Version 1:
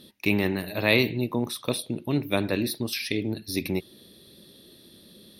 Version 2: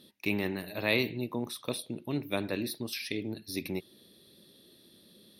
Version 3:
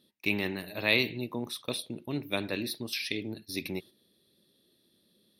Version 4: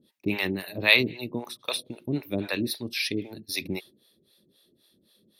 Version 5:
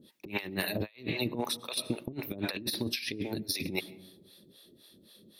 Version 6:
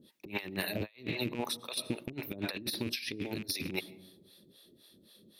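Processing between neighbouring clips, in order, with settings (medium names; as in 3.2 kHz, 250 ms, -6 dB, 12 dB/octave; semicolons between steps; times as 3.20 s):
bass shelf 67 Hz -10.5 dB; trim -6.5 dB
gate -46 dBFS, range -9 dB; dynamic bell 3.3 kHz, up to +6 dB, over -45 dBFS, Q 0.71; trim -1 dB
harmonic tremolo 3.8 Hz, depth 100%, crossover 540 Hz; trim +8.5 dB
on a send at -23 dB: reverberation RT60 1.1 s, pre-delay 70 ms; on the sum: compressor with a negative ratio -34 dBFS, ratio -0.5
rattle on loud lows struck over -40 dBFS, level -31 dBFS; trim -2.5 dB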